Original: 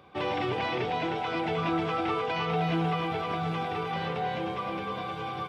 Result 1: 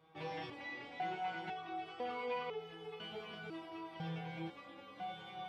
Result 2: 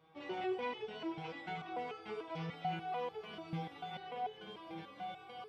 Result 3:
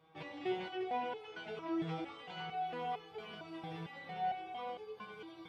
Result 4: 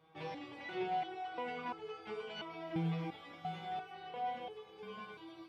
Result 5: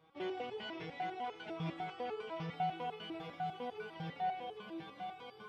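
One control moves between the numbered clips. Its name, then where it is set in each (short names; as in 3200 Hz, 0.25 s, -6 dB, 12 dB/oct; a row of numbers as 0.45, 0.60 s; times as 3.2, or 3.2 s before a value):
stepped resonator, rate: 2, 6.8, 4.4, 2.9, 10 Hz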